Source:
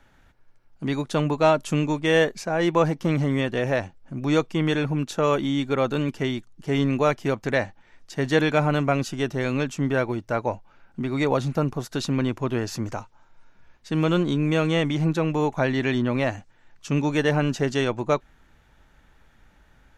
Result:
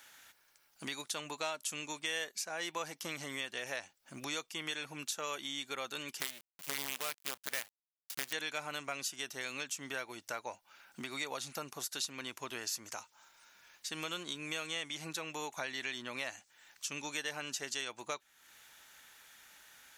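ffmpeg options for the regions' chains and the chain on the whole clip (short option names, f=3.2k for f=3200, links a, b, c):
-filter_complex "[0:a]asettb=1/sr,asplit=3[a][b][c];[a]atrim=end=6.204[d];[b]atrim=start=6.2:end=8.33,asetpts=PTS-STARTPTS,afade=t=in:d=0.004:c=qsin,afade=t=out:st=2.126:d=0.004:c=qsin,acrusher=bits=4:dc=4:mix=0:aa=0.000001,bass=f=250:g=3,treble=f=4k:g=-8[e];[c]atrim=start=8.326[f];[d][e]acrossfade=d=0.004:c1=hsin:c2=qsin[g];[g][f]acrossfade=d=0.004:c1=qsin:c2=hsin,aderivative,acompressor=threshold=-58dB:ratio=2.5,volume=15dB"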